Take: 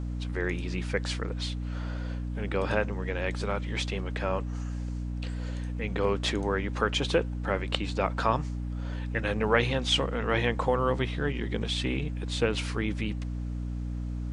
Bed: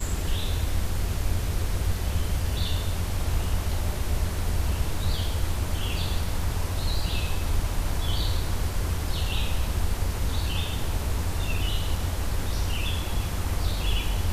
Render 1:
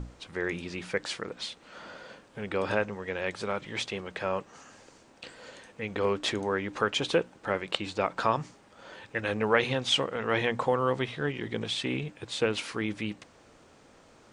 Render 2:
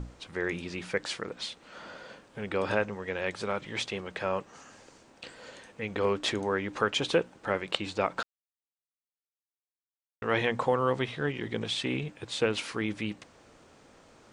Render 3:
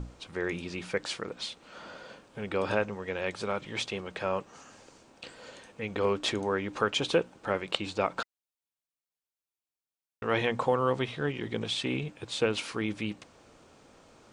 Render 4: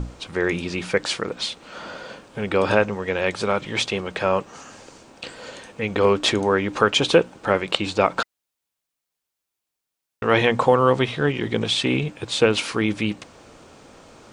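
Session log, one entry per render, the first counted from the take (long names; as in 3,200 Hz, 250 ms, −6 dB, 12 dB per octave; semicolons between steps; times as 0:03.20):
mains-hum notches 60/120/180/240/300 Hz
0:08.23–0:10.22: silence
parametric band 1,700 Hz −3 dB 0.26 octaves; notch filter 2,000 Hz, Q 23
level +10 dB; brickwall limiter −2 dBFS, peak gain reduction 2.5 dB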